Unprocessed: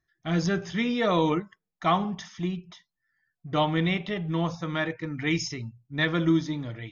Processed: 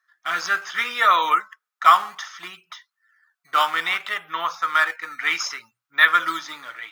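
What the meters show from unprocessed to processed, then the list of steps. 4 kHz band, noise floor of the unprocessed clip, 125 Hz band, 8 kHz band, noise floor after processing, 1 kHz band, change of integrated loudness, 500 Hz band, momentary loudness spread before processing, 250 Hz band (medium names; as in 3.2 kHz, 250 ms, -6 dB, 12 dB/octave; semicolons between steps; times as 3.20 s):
+7.0 dB, -85 dBFS, under -25 dB, no reading, under -85 dBFS, +11.5 dB, +7.0 dB, -6.5 dB, 9 LU, -19.0 dB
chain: in parallel at -11.5 dB: decimation with a swept rate 12×, swing 160% 0.63 Hz; on the sum: resonant high-pass 1.3 kHz, resonance Q 4.1; trim +5 dB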